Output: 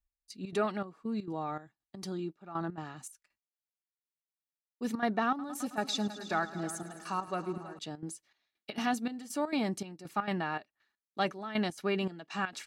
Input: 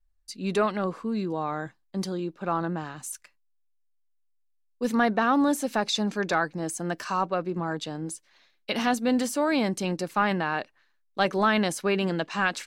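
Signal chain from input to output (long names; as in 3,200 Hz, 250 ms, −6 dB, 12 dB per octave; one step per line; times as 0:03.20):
notch comb filter 520 Hz
gate pattern "x...xx.xxx" 200 BPM −12 dB
0:05.28–0:07.79: echo machine with several playback heads 107 ms, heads all three, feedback 48%, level −18 dB
level −5.5 dB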